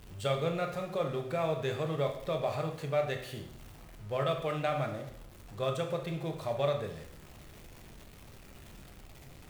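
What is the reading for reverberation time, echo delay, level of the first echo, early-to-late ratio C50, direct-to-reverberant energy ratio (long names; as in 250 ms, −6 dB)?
0.70 s, no echo audible, no echo audible, 7.5 dB, 3.0 dB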